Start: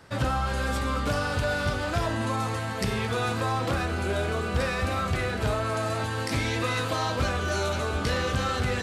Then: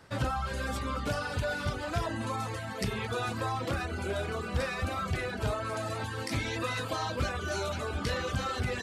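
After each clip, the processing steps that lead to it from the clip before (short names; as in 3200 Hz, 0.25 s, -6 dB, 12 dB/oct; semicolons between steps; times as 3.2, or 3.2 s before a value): reverb removal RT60 0.82 s; gain -3.5 dB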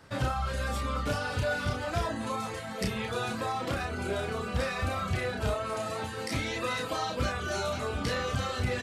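doubler 32 ms -4 dB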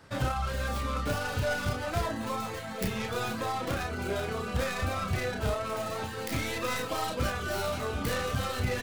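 tracing distortion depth 0.36 ms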